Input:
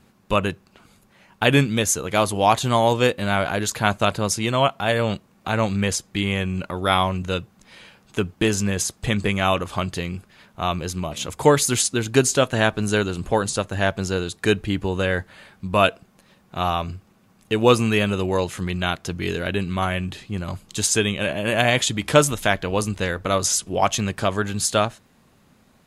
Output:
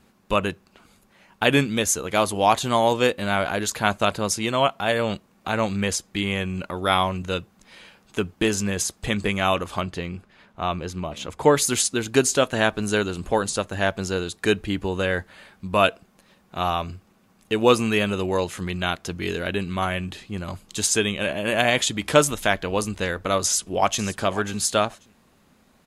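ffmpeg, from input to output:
-filter_complex "[0:a]asettb=1/sr,asplit=3[a][b][c];[a]atrim=end=9.814[d];[b]atrim=start=9.81:end=11.56,asetpts=PTS-STARTPTS,afade=t=in:d=0.004:c=qsin,afade=t=out:st=1.746:d=0.004:c=qsin,lowpass=f=2.9k:p=1[e];[c]atrim=start=11.556[f];[d][e]acrossfade=d=0.004:c1=hsin:c2=qsin[g];[g][f]acrossfade=d=0.004:c1=qsin:c2=hsin,asplit=2[h][i];[i]afade=t=in:st=23.44:d=0.01,afade=t=out:st=24.05:d=0.01,aecho=0:1:540|1080:0.177828|0.0266742[j];[h][j]amix=inputs=2:normalize=0,equalizer=f=120:t=o:w=0.74:g=-6.5,volume=-1dB"

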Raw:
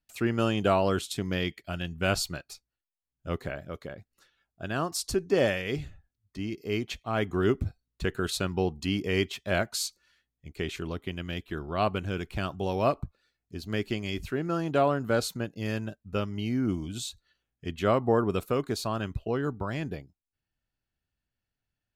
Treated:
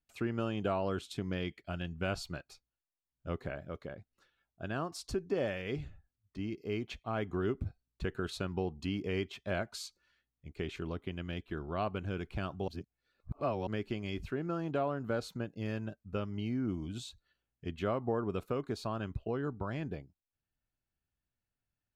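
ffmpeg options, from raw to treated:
-filter_complex "[0:a]asplit=3[a][b][c];[a]atrim=end=12.682[d];[b]atrim=start=12.678:end=13.672,asetpts=PTS-STARTPTS,areverse[e];[c]atrim=start=13.668[f];[d][e]acrossfade=d=0.004:c1=hsin:c2=hsin[g];[g][f]acrossfade=d=0.004:c1=hsin:c2=hsin,acompressor=threshold=-29dB:ratio=2,lowpass=f=2.5k:p=1,bandreject=f=1.9k:w=25,volume=-3.5dB"

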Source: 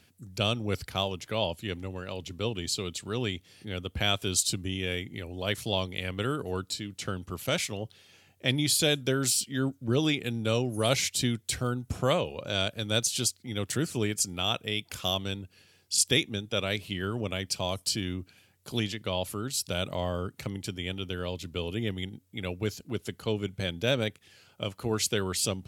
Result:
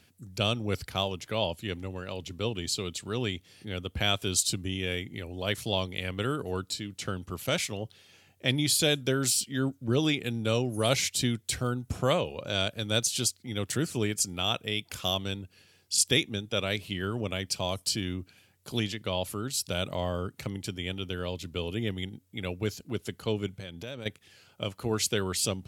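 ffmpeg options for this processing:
-filter_complex "[0:a]asettb=1/sr,asplit=3[a][b][c];[a]atrim=end=23.574[d];[b]atrim=start=23.57:end=24.06,asetpts=PTS-STARTPTS,afade=t=in:d=0.004:c=qsin,afade=t=out:st=0.486:d=0.004:c=qsin,acompressor=threshold=-39dB:ratio=3:attack=3.2:release=140:knee=1:detection=peak[e];[c]atrim=start=24.056[f];[d][e]acrossfade=d=0.004:c1=hsin:c2=qsin[g];[g][f]acrossfade=d=0.004:c1=qsin:c2=hsin"

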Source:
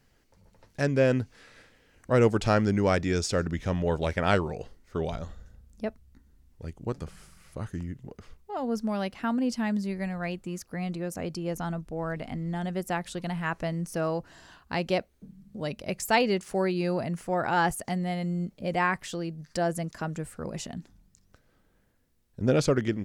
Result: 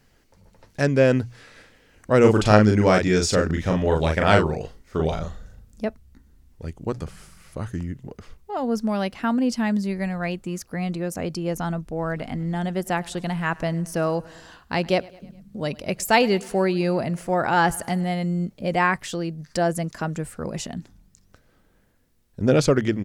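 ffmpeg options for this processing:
-filter_complex "[0:a]asplit=3[a][b][c];[a]afade=t=out:st=2.23:d=0.02[d];[b]asplit=2[e][f];[f]adelay=38,volume=-3dB[g];[e][g]amix=inputs=2:normalize=0,afade=t=in:st=2.23:d=0.02,afade=t=out:st=5.86:d=0.02[h];[c]afade=t=in:st=5.86:d=0.02[i];[d][h][i]amix=inputs=3:normalize=0,asettb=1/sr,asplit=3[j][k][l];[j]atrim=end=12.084[m];[k]atrim=start=12.08:end=18.09,asetpts=PTS-STARTPTS,afade=t=in:d=0.004:c=qsin,afade=t=out:st=6.006:d=0.004:c=qsin,aecho=1:1:104|208|312|416:0.0708|0.0404|0.023|0.0131,atrim=end_sample=265041[n];[l]atrim=start=18.086[o];[m][n]acrossfade=d=0.004:c1=hsin:c2=qsin[p];[p][o]acrossfade=d=0.004:c1=qsin:c2=hsin,bandreject=f=60:t=h:w=6,bandreject=f=120:t=h:w=6,volume=5.5dB"

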